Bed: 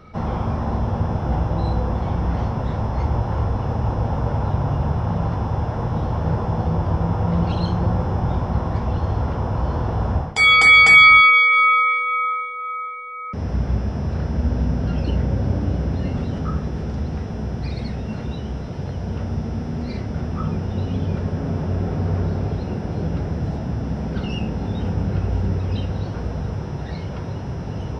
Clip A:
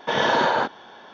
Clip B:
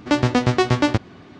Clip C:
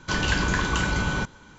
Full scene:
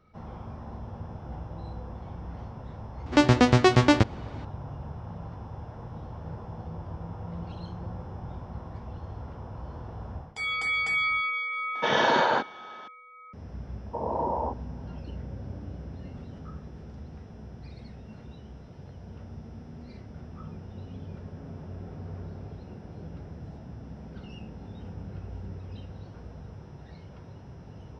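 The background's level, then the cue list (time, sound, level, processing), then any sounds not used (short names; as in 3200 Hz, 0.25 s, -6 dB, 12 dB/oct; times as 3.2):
bed -17.5 dB
3.06 add B -1 dB
11.75 add A -2.5 dB
13.86 add A -7.5 dB + elliptic low-pass 1000 Hz
not used: C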